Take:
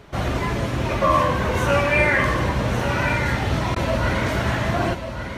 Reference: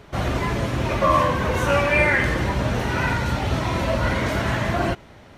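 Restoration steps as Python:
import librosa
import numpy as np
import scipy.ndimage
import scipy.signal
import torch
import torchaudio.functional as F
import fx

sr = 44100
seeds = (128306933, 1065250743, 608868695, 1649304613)

y = fx.fix_interpolate(x, sr, at_s=(3.75,), length_ms=10.0)
y = fx.fix_echo_inverse(y, sr, delay_ms=1143, level_db=-8.5)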